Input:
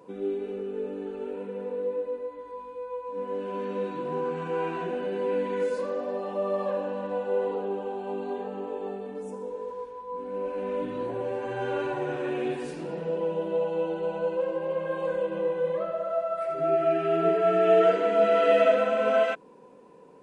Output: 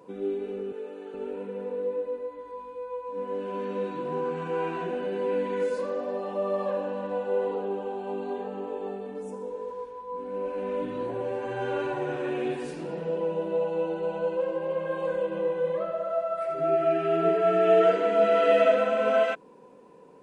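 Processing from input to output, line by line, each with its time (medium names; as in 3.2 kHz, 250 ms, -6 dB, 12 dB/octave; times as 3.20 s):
0.72–1.14 s: Bessel high-pass 540 Hz
13.22–14.10 s: band-stop 3.2 kHz, Q 13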